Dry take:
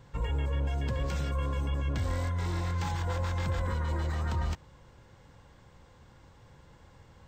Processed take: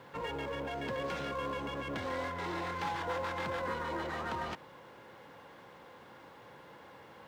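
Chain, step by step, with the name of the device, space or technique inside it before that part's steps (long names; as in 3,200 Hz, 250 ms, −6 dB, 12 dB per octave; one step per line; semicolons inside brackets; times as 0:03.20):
phone line with mismatched companding (band-pass filter 300–3,300 Hz; mu-law and A-law mismatch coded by mu)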